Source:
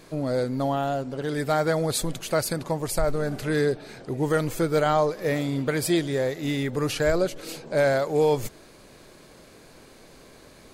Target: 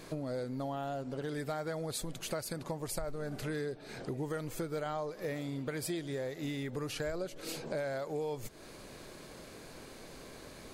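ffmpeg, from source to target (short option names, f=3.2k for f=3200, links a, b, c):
-af "acompressor=threshold=-36dB:ratio=5"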